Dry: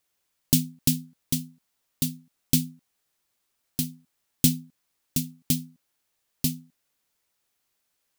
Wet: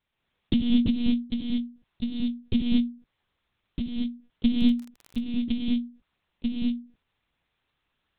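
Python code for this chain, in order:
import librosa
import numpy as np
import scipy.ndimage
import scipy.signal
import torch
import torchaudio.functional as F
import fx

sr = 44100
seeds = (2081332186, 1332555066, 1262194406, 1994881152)

y = fx.rev_gated(x, sr, seeds[0], gate_ms=260, shape='rising', drr_db=-4.0)
y = fx.lpc_monotone(y, sr, seeds[1], pitch_hz=240.0, order=8)
y = fx.dmg_crackle(y, sr, seeds[2], per_s=34.0, level_db=-33.0, at=(4.59, 5.19), fade=0.02)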